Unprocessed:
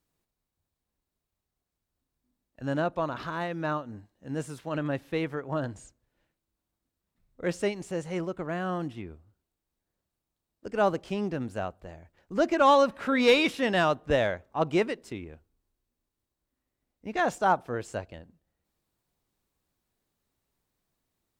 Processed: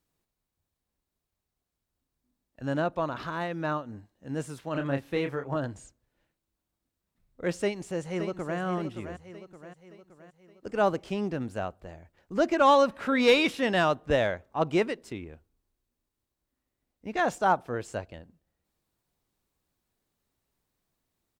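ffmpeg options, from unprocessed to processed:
ffmpeg -i in.wav -filter_complex "[0:a]asettb=1/sr,asplit=3[link_01][link_02][link_03];[link_01]atrim=end=4.724[link_04];[link_02]atrim=start=4.72:end=5.56,asetpts=PTS-STARTPTS,afade=type=in:duration=0.004:curve=qsin,afade=type=out:start_time=0.836:duration=0.004:curve=qsin,asplit=2[link_05][link_06];[link_06]adelay=29,volume=-6dB[link_07];[link_05][link_07]amix=inputs=2:normalize=0,atrim=end_sample=37044[link_08];[link_03]atrim=start=5.556[link_09];[link_04][link_08]acrossfade=duration=0.004:curve1=hsin:curve2=qsin[link_10];[link_10][link_09]acrossfade=duration=0.004:curve1=qsin:curve2=hsin,asplit=2[link_11][link_12];[link_12]afade=type=in:start_time=7.62:duration=0.01,afade=type=out:start_time=8.59:duration=0.01,aecho=0:1:570|1140|1710|2280|2850|3420:0.354813|0.177407|0.0887033|0.0443517|0.0221758|0.0110879[link_13];[link_11][link_13]amix=inputs=2:normalize=0" out.wav

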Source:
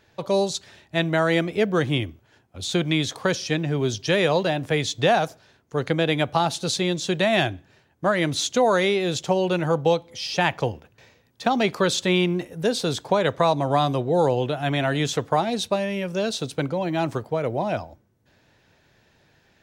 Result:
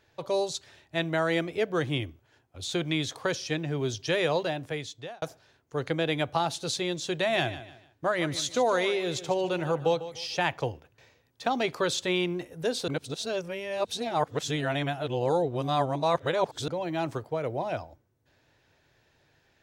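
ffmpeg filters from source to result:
ffmpeg -i in.wav -filter_complex "[0:a]asettb=1/sr,asplit=3[link_01][link_02][link_03];[link_01]atrim=end=7.144[link_04];[link_02]atrim=start=7.14:end=10.36,asetpts=PTS-STARTPTS,afade=type=in:duration=0.004:curve=qsin,afade=type=out:start_time=3.216:duration=0.004:curve=qsin,aecho=1:1:149|298|447:0.2|0.0638|0.0204,atrim=end_sample=142002[link_05];[link_03]atrim=start=10.356[link_06];[link_04][link_05]acrossfade=duration=0.004:curve1=hsin:curve2=qsin[link_07];[link_07][link_06]acrossfade=duration=0.004:curve1=qsin:curve2=hsin,asplit=4[link_08][link_09][link_10][link_11];[link_08]atrim=end=5.22,asetpts=PTS-STARTPTS,afade=type=out:start_time=4.39:duration=0.83[link_12];[link_09]atrim=start=5.22:end=12.882,asetpts=PTS-STARTPTS,afade=type=in:duration=0.004:curve=hsin[link_13];[link_10]atrim=start=12.878:end=16.682,asetpts=PTS-STARTPTS,areverse[link_14];[link_11]atrim=start=16.678[link_15];[link_12][link_13]concat=n=2:v=0:a=1[link_16];[link_16][link_14]acrossfade=duration=0.004:curve1=hsin:curve2=hsin[link_17];[link_17][link_15]acrossfade=duration=0.004:curve1=hsin:curve2=hsin,equalizer=frequency=200:width_type=o:width=0.23:gain=-14.5,volume=-5.5dB" out.wav

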